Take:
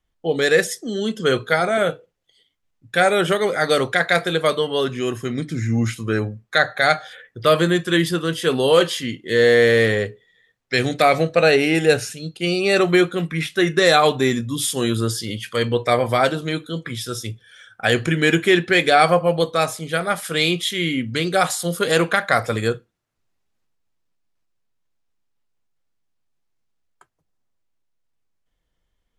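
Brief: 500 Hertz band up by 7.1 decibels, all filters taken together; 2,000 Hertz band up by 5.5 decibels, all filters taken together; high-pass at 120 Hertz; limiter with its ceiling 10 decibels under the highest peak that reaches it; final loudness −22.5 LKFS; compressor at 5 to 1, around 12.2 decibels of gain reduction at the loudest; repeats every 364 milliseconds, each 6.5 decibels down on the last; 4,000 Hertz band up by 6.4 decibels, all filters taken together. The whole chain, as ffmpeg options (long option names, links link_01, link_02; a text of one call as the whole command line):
ffmpeg -i in.wav -af "highpass=120,equalizer=frequency=500:width_type=o:gain=8,equalizer=frequency=2000:width_type=o:gain=5,equalizer=frequency=4000:width_type=o:gain=6,acompressor=threshold=-17dB:ratio=5,alimiter=limit=-12dB:level=0:latency=1,aecho=1:1:364|728|1092|1456|1820|2184:0.473|0.222|0.105|0.0491|0.0231|0.0109,volume=-0.5dB" out.wav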